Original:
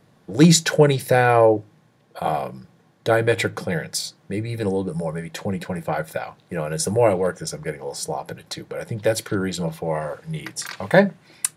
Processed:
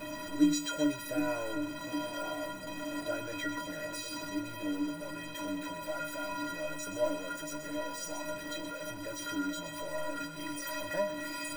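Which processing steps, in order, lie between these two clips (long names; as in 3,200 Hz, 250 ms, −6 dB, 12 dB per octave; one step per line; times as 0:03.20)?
converter with a step at zero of −16 dBFS
floating-point word with a short mantissa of 2 bits
high-shelf EQ 4,000 Hz −8.5 dB
stiff-string resonator 290 Hz, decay 0.48 s, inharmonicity 0.03
echo with a time of its own for lows and highs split 840 Hz, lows 760 ms, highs 126 ms, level −9 dB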